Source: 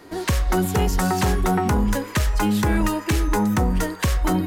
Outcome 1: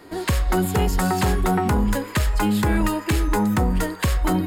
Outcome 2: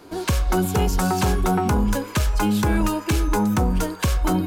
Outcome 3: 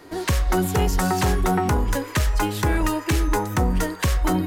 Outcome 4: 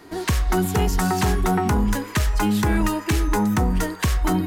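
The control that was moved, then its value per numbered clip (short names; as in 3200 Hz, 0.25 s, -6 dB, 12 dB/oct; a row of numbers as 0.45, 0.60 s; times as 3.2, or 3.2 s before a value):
notch, frequency: 5900, 1900, 210, 540 Hz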